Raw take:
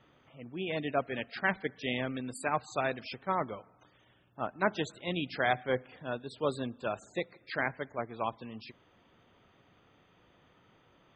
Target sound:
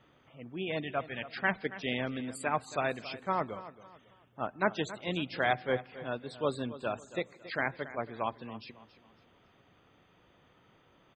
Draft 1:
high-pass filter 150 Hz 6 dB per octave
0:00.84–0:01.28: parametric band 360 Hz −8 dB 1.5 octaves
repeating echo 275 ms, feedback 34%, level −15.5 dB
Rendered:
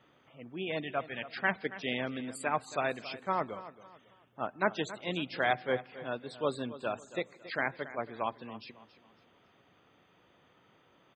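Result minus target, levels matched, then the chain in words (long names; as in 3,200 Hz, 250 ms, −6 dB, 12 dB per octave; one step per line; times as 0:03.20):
125 Hz band −3.0 dB
0:00.84–0:01.28: parametric band 360 Hz −8 dB 1.5 octaves
repeating echo 275 ms, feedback 34%, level −15.5 dB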